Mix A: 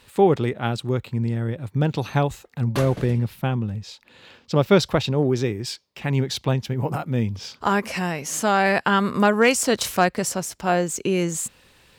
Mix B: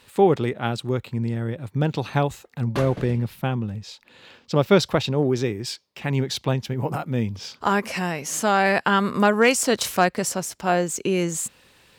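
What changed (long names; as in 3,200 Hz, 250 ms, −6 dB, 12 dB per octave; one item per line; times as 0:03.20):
speech: add low-shelf EQ 64 Hz −9.5 dB
background: add high-shelf EQ 5,800 Hz −9.5 dB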